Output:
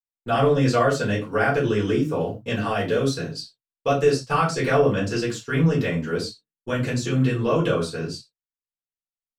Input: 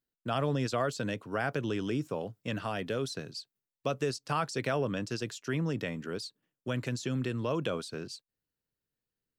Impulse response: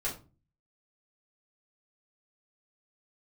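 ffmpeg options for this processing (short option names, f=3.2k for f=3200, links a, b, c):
-filter_complex "[0:a]acontrast=53,agate=range=-33dB:threshold=-34dB:ratio=3:detection=peak[a];[1:a]atrim=start_sample=2205,atrim=end_sample=6174[b];[a][b]afir=irnorm=-1:irlink=0"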